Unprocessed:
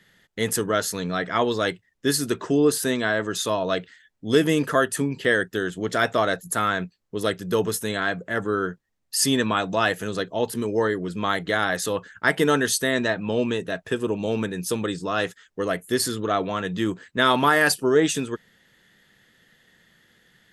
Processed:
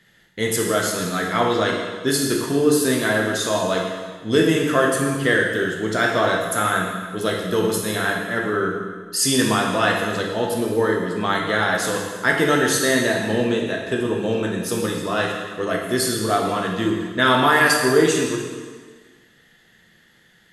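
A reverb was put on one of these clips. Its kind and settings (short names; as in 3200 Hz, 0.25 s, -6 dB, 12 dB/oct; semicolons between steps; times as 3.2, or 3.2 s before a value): plate-style reverb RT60 1.5 s, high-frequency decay 0.95×, DRR -1.5 dB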